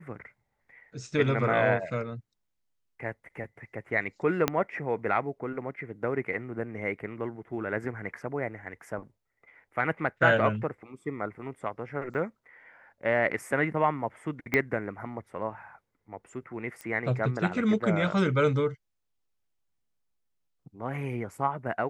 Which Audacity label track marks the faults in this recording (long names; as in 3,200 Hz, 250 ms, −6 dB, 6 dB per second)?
4.480000	4.480000	click −9 dBFS
12.140000	12.150000	drop-out 8.3 ms
14.540000	14.540000	click −12 dBFS
16.810000	16.810000	click −24 dBFS